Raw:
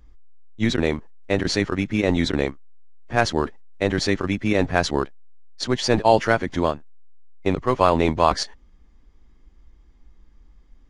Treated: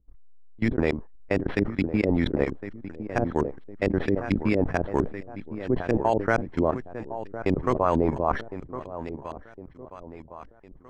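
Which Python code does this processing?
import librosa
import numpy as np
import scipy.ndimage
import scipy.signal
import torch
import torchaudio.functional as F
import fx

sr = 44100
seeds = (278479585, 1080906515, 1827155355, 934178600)

p1 = np.repeat(scipy.signal.resample_poly(x, 1, 6), 6)[:len(x)]
p2 = fx.level_steps(p1, sr, step_db=22)
p3 = p2 + fx.echo_feedback(p2, sr, ms=1058, feedback_pct=42, wet_db=-12, dry=0)
p4 = fx.filter_lfo_lowpass(p3, sr, shape='saw_up', hz=4.4, low_hz=330.0, high_hz=3600.0, q=1.1)
y = fx.sustainer(p4, sr, db_per_s=130.0)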